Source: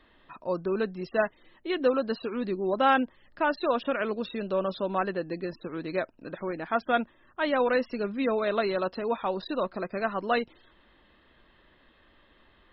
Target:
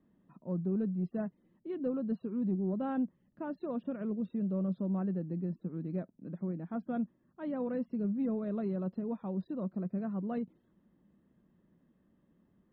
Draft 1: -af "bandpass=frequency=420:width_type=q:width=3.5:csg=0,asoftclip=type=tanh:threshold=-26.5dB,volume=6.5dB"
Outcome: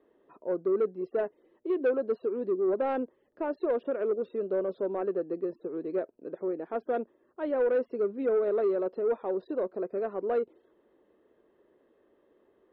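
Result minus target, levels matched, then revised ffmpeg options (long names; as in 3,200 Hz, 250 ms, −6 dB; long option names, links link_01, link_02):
250 Hz band −8.0 dB
-af "bandpass=frequency=180:width_type=q:width=3.5:csg=0,asoftclip=type=tanh:threshold=-26.5dB,volume=6.5dB"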